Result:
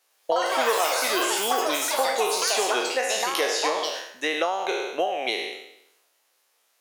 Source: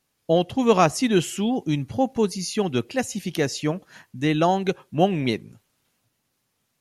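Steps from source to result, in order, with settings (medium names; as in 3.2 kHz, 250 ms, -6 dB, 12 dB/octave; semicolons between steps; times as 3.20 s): spectral sustain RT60 0.78 s; high-pass 460 Hz 24 dB/octave; compression 10:1, threshold -26 dBFS, peak gain reduction 15.5 dB; ever faster or slower copies 106 ms, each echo +6 st, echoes 3; trim +4.5 dB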